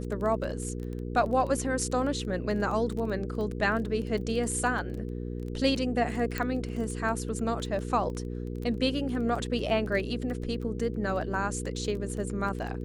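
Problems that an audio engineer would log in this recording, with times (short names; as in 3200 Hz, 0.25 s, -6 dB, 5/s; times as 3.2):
crackle 15/s -34 dBFS
hum 60 Hz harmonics 8 -35 dBFS
6.38 pop -16 dBFS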